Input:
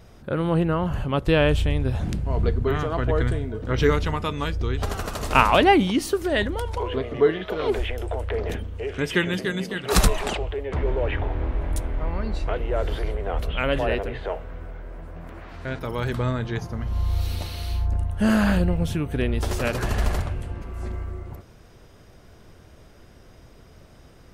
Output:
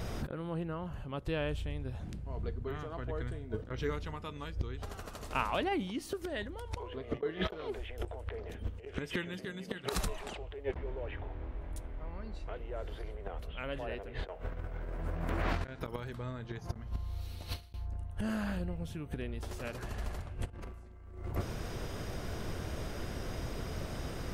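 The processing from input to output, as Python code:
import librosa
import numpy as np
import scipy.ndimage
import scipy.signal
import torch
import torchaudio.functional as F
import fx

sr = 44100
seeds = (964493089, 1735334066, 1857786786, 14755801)

y = fx.gate_flip(x, sr, shuts_db=-20.0, range_db=-26)
y = fx.over_compress(y, sr, threshold_db=-40.0, ratio=-0.5)
y = F.gain(torch.from_numpy(y), 6.5).numpy()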